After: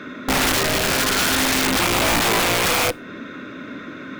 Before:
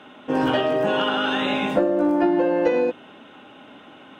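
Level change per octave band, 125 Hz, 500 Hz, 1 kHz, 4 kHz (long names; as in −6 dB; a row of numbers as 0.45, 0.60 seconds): +7.5, −4.0, +3.5, +9.0 decibels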